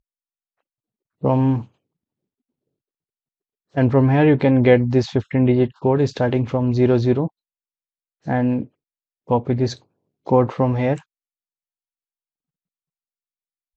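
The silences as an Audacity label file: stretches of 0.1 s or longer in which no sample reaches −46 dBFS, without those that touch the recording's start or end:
1.670000	3.740000	silence
7.280000	8.250000	silence
8.670000	9.270000	silence
9.820000	10.260000	silence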